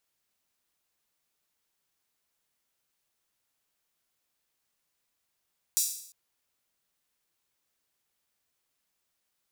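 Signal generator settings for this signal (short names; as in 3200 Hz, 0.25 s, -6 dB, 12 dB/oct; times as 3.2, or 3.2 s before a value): open hi-hat length 0.35 s, high-pass 6100 Hz, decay 0.65 s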